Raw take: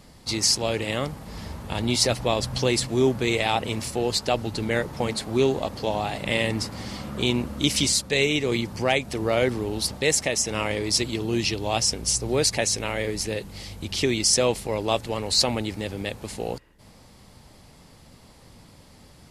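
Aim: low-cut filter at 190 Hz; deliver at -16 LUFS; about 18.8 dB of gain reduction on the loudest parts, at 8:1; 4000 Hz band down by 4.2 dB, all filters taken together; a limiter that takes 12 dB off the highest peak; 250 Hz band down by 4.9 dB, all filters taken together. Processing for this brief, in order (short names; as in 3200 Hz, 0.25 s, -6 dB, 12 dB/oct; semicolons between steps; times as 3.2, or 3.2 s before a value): HPF 190 Hz; bell 250 Hz -5 dB; bell 4000 Hz -5.5 dB; compressor 8:1, threshold -39 dBFS; gain +29.5 dB; limiter -5 dBFS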